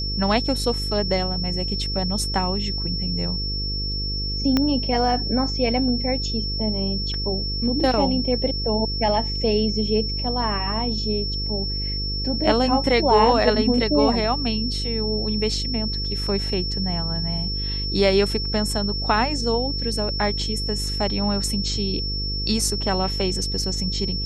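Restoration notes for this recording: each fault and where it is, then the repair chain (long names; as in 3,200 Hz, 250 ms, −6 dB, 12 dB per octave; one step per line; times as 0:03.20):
mains buzz 50 Hz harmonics 10 −28 dBFS
whistle 5,400 Hz −27 dBFS
0:04.57: click −7 dBFS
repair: click removal
hum removal 50 Hz, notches 10
notch filter 5,400 Hz, Q 30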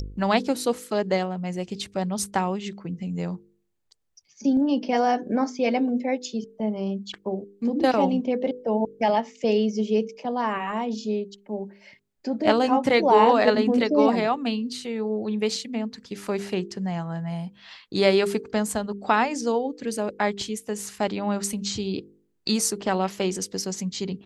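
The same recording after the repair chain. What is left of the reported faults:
0:04.57: click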